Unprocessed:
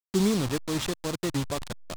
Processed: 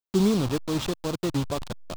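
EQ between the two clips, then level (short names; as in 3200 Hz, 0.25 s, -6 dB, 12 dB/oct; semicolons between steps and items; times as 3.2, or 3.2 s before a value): bell 1900 Hz -6 dB 0.67 oct; bell 9600 Hz -6.5 dB 1.7 oct; +2.5 dB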